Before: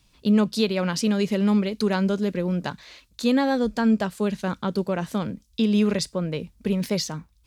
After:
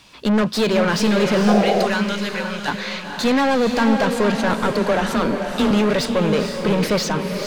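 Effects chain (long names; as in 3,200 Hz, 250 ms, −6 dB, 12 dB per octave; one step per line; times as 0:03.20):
0:01.63–0:02.68: guitar amp tone stack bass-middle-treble 10-0-10
mid-hump overdrive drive 28 dB, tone 2,200 Hz, clips at −10.5 dBFS
0:04.71–0:05.71: frequency shifter +18 Hz
feedback delay with all-pass diffusion 477 ms, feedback 41%, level −5.5 dB
0:01.47–0:01.87: sound drawn into the spectrogram noise 350–820 Hz −19 dBFS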